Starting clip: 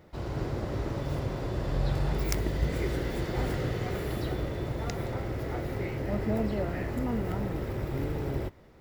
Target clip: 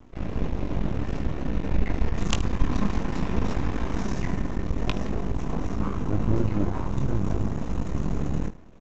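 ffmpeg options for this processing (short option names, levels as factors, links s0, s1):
-af "asetrate=22696,aresample=44100,atempo=1.94306,aresample=16000,aeval=exprs='max(val(0),0)':c=same,aresample=44100,aecho=1:1:20|75:0.376|0.158,volume=2.82"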